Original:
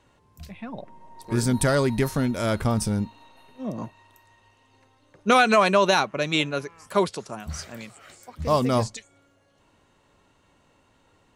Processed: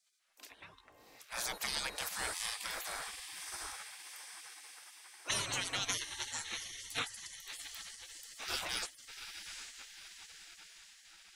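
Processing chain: diffused feedback echo 0.745 s, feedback 57%, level -9 dB; spectral gate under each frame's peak -25 dB weak; 3.73–5.29 HPF 95 Hz -> 270 Hz 24 dB/oct

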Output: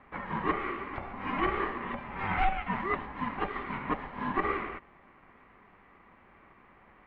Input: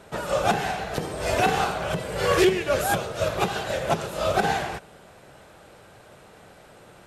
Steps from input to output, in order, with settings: speaker cabinet 280–2000 Hz, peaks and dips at 510 Hz -9 dB, 1100 Hz -9 dB, 1800 Hz +5 dB; ring modulator 390 Hz; gain -1.5 dB

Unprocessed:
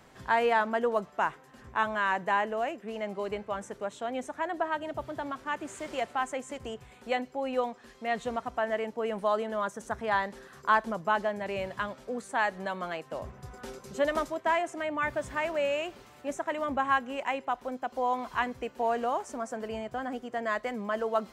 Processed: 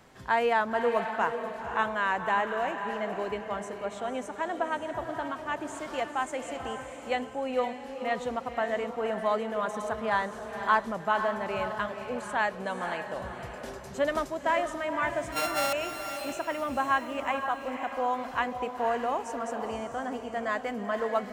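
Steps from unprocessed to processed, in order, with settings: 15.32–15.73 sample sorter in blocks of 32 samples; diffused feedback echo 0.518 s, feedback 40%, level -7 dB

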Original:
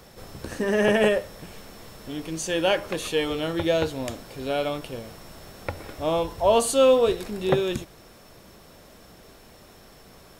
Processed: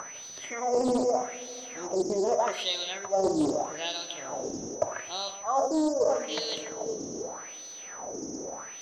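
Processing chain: tilt shelf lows +5.5 dB; darkening echo 0.17 s, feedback 38%, level -9 dB; in parallel at +1 dB: upward compressor, threshold -24 dBFS; on the sum: wah 0.69 Hz 250–3500 Hz, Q 4.1; varispeed +18%; reverb, pre-delay 46 ms, DRR 14 dB; reverse; compressor 16:1, threshold -26 dBFS, peak gain reduction 16.5 dB; reverse; whine 6000 Hz -45 dBFS; Doppler distortion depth 0.36 ms; gain +4 dB

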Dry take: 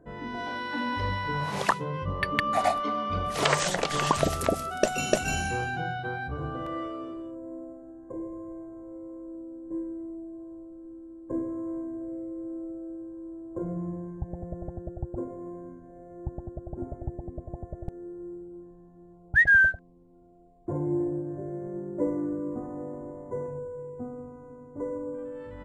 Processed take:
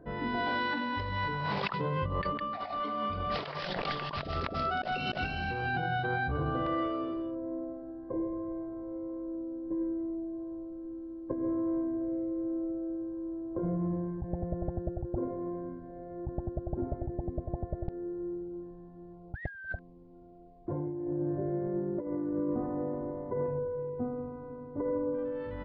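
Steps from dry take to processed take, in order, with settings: negative-ratio compressor -33 dBFS, ratio -1; downsampling 11025 Hz

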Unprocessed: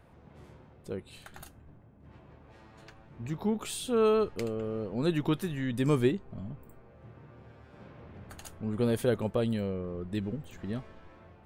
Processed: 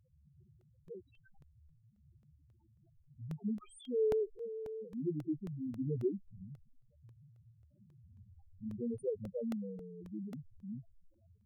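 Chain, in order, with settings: loudest bins only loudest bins 2; crackling interface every 0.27 s, samples 64, repeat, from 0.61; gain -5 dB

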